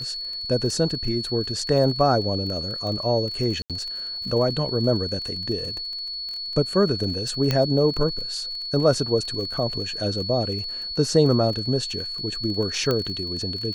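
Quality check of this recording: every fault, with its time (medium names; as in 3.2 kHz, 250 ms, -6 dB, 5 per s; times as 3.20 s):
crackle 29 per s -31 dBFS
whine 4.4 kHz -29 dBFS
3.62–3.70 s: dropout 77 ms
7.51 s: pop -8 dBFS
12.91 s: pop -10 dBFS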